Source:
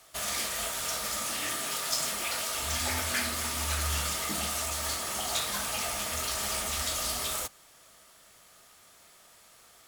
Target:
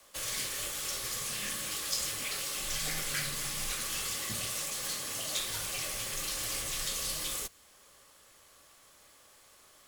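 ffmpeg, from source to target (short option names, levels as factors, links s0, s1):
-filter_complex "[0:a]asettb=1/sr,asplit=3[s0][s1][s2];[s0]atrim=end=3.704[s3];[s1]atrim=start=3.7:end=5.39,asetpts=PTS-STARTPTS,afade=t=in:d=0.004:c=qsin,afade=t=out:st=1.686:d=0.004:c=qsin,highpass=170[s4];[s2]atrim=start=5.386[s5];[s3][s4]acrossfade=d=0.004:c1=hsin:c2=qsin[s6];[s6][s5]acrossfade=d=0.004:c1=qsin:c2=hsin,acrossover=split=600|1500[s7][s8][s9];[s8]acompressor=threshold=0.00158:ratio=6[s10];[s7][s10][s9]amix=inputs=3:normalize=0,afreqshift=-95,volume=0.75"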